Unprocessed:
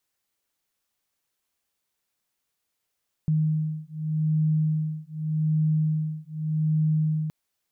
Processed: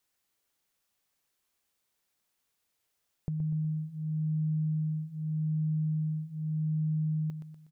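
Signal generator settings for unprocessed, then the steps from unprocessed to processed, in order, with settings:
two tones that beat 155 Hz, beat 0.84 Hz, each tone −25 dBFS 4.02 s
downward compressor 4 to 1, threshold −34 dBFS
on a send: repeating echo 122 ms, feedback 45%, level −10 dB

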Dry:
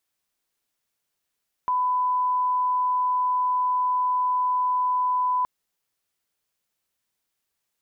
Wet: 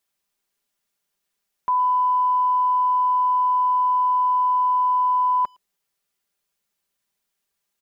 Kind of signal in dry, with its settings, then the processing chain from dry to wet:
line-up tone −20 dBFS 3.77 s
comb filter 5 ms, depth 52%
far-end echo of a speakerphone 110 ms, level −26 dB

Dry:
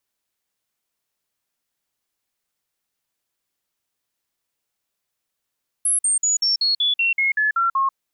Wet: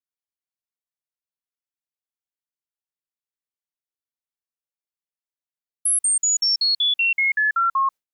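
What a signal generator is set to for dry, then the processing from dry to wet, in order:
stepped sweep 10,900 Hz down, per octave 3, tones 11, 0.14 s, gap 0.05 s −16 dBFS
noise gate with hold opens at −19 dBFS

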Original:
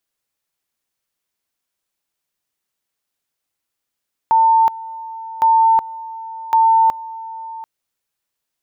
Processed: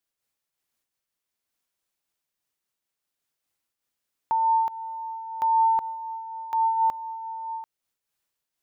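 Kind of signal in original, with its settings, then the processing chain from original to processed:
tone at two levels in turn 899 Hz −9 dBFS, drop 18.5 dB, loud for 0.37 s, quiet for 0.74 s, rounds 3
brickwall limiter −15.5 dBFS
amplitude modulation by smooth noise, depth 60%

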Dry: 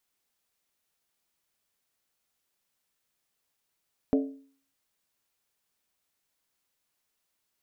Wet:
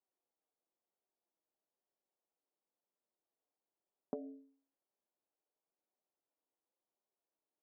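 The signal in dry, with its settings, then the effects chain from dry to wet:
struck skin, lowest mode 273 Hz, decay 0.49 s, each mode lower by 5.5 dB, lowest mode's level −18.5 dB
downward compressor, threshold −29 dBFS
flanger 1 Hz, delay 5 ms, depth 1.7 ms, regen −51%
flat-topped band-pass 470 Hz, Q 0.8

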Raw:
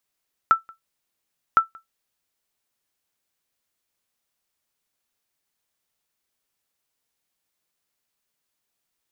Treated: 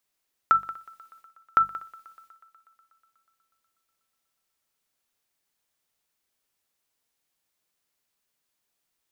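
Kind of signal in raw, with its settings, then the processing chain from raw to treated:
ping with an echo 1,330 Hz, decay 0.14 s, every 1.06 s, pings 2, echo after 0.18 s, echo −28 dB −6.5 dBFS
mains-hum notches 50/100/150/200 Hz
transient designer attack −2 dB, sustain +10 dB
feedback echo with a high-pass in the loop 122 ms, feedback 78%, high-pass 170 Hz, level −24 dB

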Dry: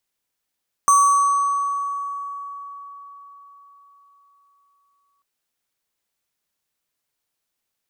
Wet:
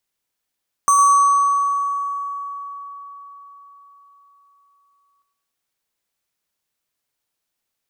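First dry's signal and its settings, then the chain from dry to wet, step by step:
two-operator FM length 4.34 s, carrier 1,130 Hz, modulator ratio 6.52, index 0.58, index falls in 2.93 s exponential, decay 4.64 s, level −10 dB
bucket-brigade delay 107 ms, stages 4,096, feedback 36%, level −11 dB

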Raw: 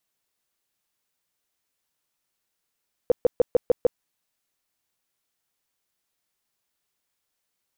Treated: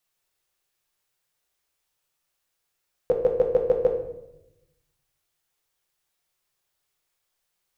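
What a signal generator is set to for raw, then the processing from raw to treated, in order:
tone bursts 490 Hz, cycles 8, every 0.15 s, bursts 6, −12.5 dBFS
parametric band 240 Hz −14.5 dB 0.41 octaves
rectangular room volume 270 cubic metres, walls mixed, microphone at 0.94 metres

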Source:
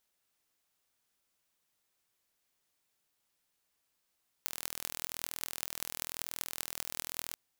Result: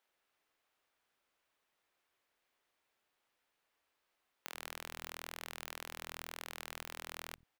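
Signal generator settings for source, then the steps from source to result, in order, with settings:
impulse train 41 per second, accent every 8, −6 dBFS 2.90 s
in parallel at −3 dB: wave folding −14.5 dBFS
on the sum: bass and treble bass −8 dB, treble −14 dB
multiband delay without the direct sound highs, lows 90 ms, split 180 Hz

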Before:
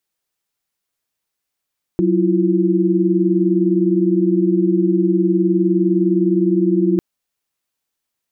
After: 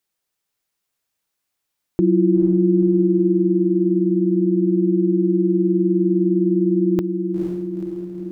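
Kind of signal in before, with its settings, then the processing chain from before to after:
held notes F#3/E4/F4 sine, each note −17 dBFS 5.00 s
on a send: feedback delay with all-pass diffusion 481 ms, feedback 58%, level −5.5 dB

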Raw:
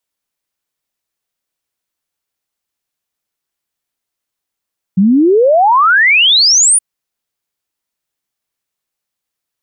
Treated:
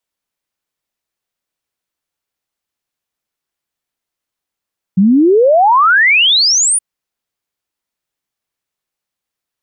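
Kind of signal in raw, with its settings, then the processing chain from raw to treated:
exponential sine sweep 180 Hz → 10,000 Hz 1.82 s −5.5 dBFS
high-shelf EQ 5,000 Hz −4.5 dB

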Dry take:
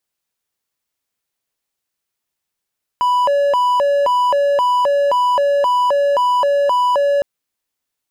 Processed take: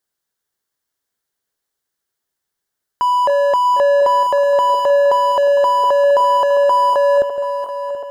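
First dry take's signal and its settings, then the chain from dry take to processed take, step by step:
siren hi-lo 568–988 Hz 1.9 per second triangle −10 dBFS 4.21 s
feedback delay that plays each chunk backwards 365 ms, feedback 72%, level −11.5 dB
thirty-one-band graphic EQ 400 Hz +4 dB, 1,600 Hz +5 dB, 2,500 Hz −9 dB

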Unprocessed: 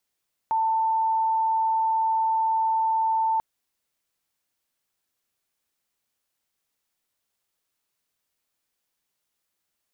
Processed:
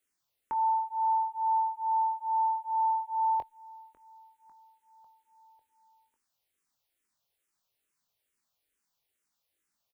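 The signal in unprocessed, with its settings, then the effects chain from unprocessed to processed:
tone sine 891 Hz −20 dBFS 2.89 s
double-tracking delay 22 ms −10 dB
repeating echo 548 ms, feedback 59%, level −20.5 dB
frequency shifter mixed with the dry sound −2.3 Hz

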